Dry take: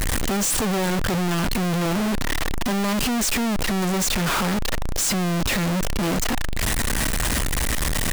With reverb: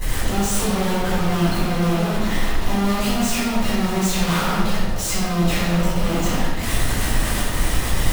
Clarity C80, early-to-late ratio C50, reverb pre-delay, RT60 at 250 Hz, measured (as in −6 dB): 0.5 dB, −2.0 dB, 4 ms, 1.8 s